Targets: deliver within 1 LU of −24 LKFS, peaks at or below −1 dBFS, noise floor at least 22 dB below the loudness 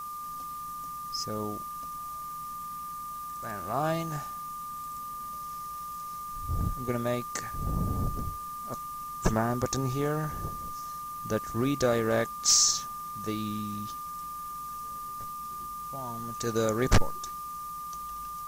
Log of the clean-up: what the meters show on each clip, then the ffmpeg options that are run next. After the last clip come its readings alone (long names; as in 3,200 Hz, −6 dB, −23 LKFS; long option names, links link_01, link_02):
interfering tone 1,200 Hz; level of the tone −36 dBFS; background noise floor −39 dBFS; target noise floor −54 dBFS; integrated loudness −31.5 LKFS; sample peak −14.0 dBFS; target loudness −24.0 LKFS
→ -af "bandreject=frequency=1200:width=30"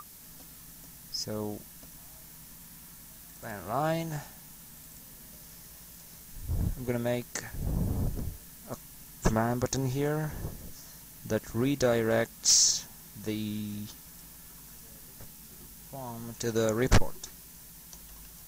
interfering tone none found; background noise floor −50 dBFS; target noise floor −52 dBFS
→ -af "afftdn=noise_reduction=6:noise_floor=-50"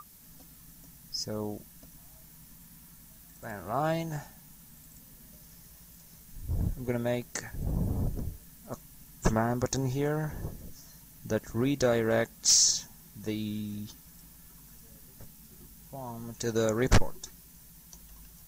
background noise floor −54 dBFS; integrated loudness −30.0 LKFS; sample peak −14.0 dBFS; target loudness −24.0 LKFS
→ -af "volume=6dB"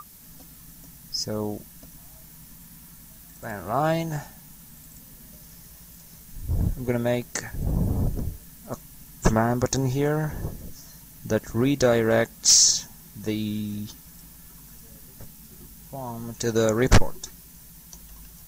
integrated loudness −24.0 LKFS; sample peak −8.0 dBFS; background noise floor −48 dBFS